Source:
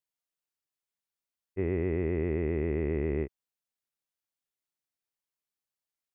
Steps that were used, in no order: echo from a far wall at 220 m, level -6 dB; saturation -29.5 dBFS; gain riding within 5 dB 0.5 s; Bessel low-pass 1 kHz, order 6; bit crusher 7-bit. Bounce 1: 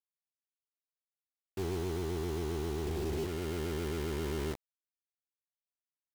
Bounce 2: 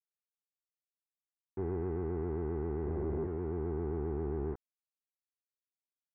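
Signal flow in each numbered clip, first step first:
echo from a far wall > saturation > Bessel low-pass > bit crusher > gain riding; echo from a far wall > gain riding > bit crusher > saturation > Bessel low-pass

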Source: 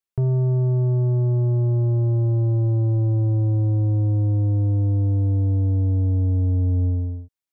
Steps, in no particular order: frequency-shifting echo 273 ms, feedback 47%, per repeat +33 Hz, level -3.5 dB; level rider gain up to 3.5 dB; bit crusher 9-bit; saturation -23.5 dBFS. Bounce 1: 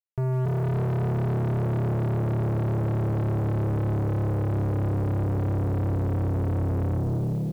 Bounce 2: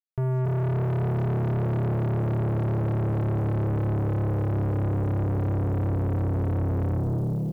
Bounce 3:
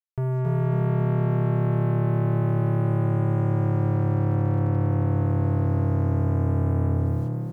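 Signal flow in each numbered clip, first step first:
frequency-shifting echo > level rider > saturation > bit crusher; level rider > frequency-shifting echo > bit crusher > saturation; level rider > bit crusher > saturation > frequency-shifting echo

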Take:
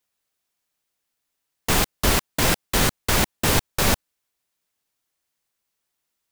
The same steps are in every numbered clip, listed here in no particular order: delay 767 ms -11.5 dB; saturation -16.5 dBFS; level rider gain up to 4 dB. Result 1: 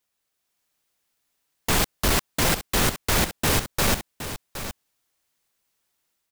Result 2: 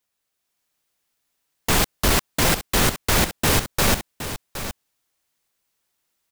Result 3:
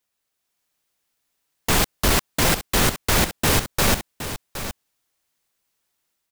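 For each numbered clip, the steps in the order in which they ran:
level rider > saturation > delay; saturation > delay > level rider; saturation > level rider > delay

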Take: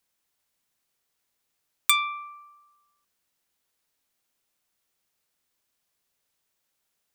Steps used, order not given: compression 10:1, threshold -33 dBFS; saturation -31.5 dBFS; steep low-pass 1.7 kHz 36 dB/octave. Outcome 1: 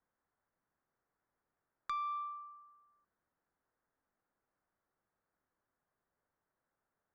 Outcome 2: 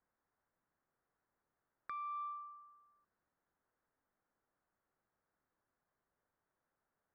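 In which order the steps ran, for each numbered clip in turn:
steep low-pass > compression > saturation; compression > steep low-pass > saturation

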